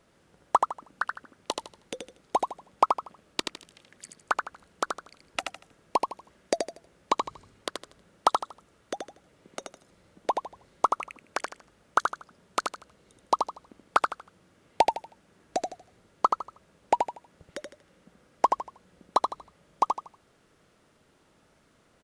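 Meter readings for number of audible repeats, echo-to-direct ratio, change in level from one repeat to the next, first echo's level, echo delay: 3, -4.0 dB, -11.0 dB, -4.5 dB, 79 ms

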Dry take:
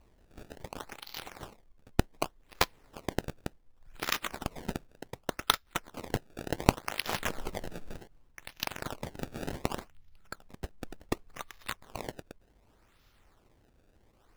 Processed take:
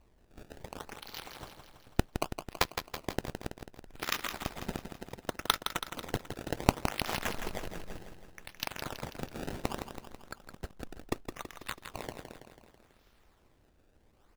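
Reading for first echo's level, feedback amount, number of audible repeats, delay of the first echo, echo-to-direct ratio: -8.0 dB, 58%, 6, 164 ms, -6.0 dB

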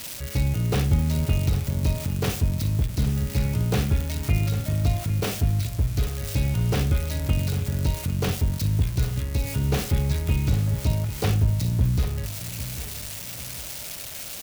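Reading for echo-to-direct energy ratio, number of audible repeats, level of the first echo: -12.5 dB, 2, -13.0 dB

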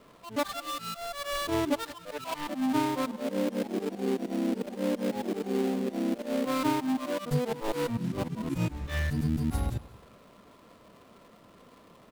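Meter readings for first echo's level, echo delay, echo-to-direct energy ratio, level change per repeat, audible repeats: -20.0 dB, 184 ms, -19.5 dB, -10.5 dB, 2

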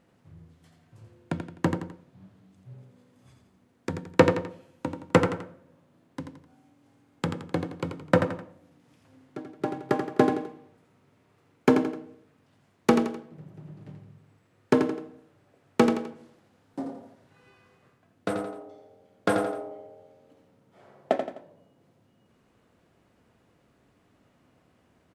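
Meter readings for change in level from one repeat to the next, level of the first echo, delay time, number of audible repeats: -8.0 dB, -7.0 dB, 85 ms, 3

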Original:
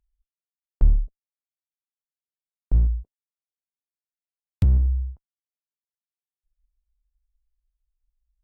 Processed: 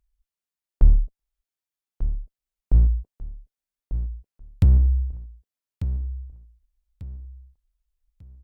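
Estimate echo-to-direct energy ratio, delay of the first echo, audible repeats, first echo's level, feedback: -10.5 dB, 1194 ms, 3, -11.0 dB, 30%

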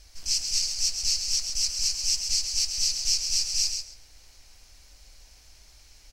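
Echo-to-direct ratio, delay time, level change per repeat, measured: -6.5 dB, 134 ms, -15.5 dB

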